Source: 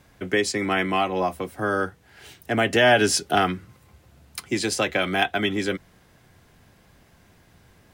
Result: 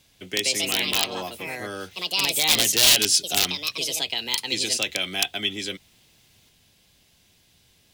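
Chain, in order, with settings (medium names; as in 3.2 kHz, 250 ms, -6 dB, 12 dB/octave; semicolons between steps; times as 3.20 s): ever faster or slower copies 195 ms, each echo +4 st, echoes 2; integer overflow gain 10 dB; resonant high shelf 2.2 kHz +12 dB, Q 1.5; trim -9.5 dB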